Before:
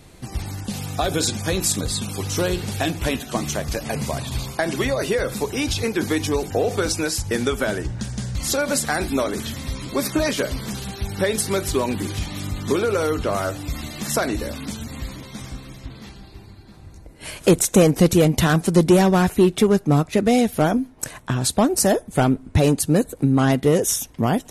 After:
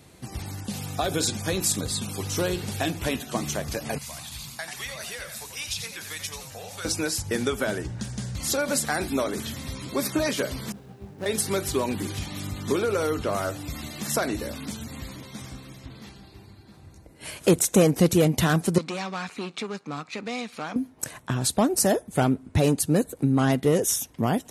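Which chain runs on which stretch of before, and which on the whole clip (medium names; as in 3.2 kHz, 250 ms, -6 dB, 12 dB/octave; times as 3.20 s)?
3.98–6.85 s: amplifier tone stack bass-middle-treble 10-0-10 + frequency-shifting echo 88 ms, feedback 34%, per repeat +85 Hz, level -7.5 dB
10.72–11.26 s: median filter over 41 samples + bass shelf 110 Hz -10 dB + detune thickener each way 28 cents
18.78–20.76 s: partial rectifier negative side -7 dB + cabinet simulation 240–7800 Hz, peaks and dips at 360 Hz -8 dB, 630 Hz -7 dB, 1.2 kHz +7 dB, 2.4 kHz +9 dB, 4.2 kHz +8 dB + compression 1.5:1, threshold -33 dBFS
whole clip: high-pass 72 Hz; treble shelf 11 kHz +3.5 dB; trim -4 dB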